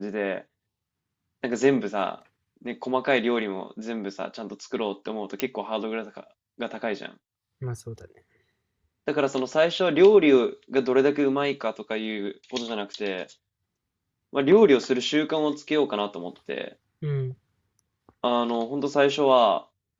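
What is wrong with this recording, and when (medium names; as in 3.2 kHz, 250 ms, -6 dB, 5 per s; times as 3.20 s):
5.40 s: pop -8 dBFS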